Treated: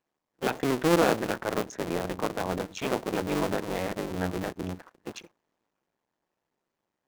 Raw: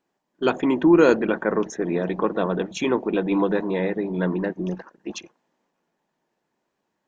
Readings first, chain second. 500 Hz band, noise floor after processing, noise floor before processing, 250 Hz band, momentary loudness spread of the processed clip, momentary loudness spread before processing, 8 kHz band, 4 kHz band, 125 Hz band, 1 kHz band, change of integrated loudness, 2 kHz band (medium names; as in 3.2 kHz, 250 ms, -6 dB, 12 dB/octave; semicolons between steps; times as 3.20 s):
-7.0 dB, -85 dBFS, -78 dBFS, -9.0 dB, 14 LU, 14 LU, no reading, 0.0 dB, -4.0 dB, -2.5 dB, -7.0 dB, -4.5 dB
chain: cycle switcher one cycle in 2, muted; trim -4 dB